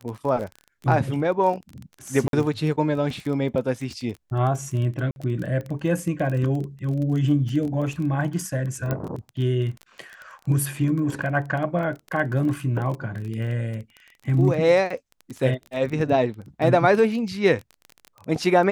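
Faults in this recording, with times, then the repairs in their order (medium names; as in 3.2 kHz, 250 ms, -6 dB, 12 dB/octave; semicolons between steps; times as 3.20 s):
crackle 22 per s -29 dBFS
2.28–2.33 s: dropout 52 ms
5.11–5.16 s: dropout 51 ms
8.91 s: pop -13 dBFS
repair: de-click; interpolate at 2.28 s, 52 ms; interpolate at 5.11 s, 51 ms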